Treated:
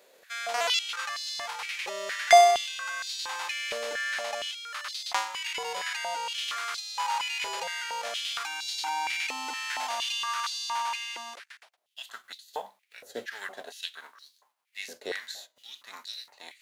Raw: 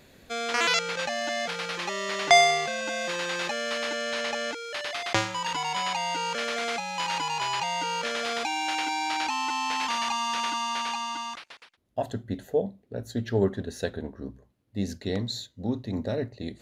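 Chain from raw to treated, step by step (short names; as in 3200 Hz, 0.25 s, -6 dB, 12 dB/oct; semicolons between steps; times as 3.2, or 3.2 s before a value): spectral whitening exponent 0.6; stepped high-pass 4.3 Hz 490–4200 Hz; gain -7 dB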